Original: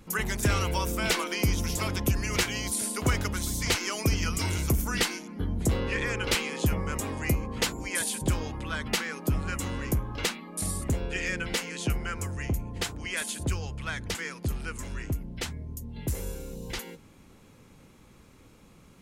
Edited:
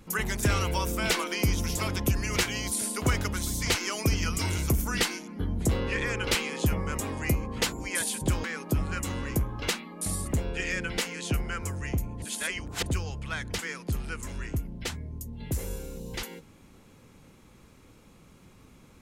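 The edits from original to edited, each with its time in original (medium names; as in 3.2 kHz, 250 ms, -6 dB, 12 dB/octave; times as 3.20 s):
8.44–9.00 s: delete
12.78–13.42 s: reverse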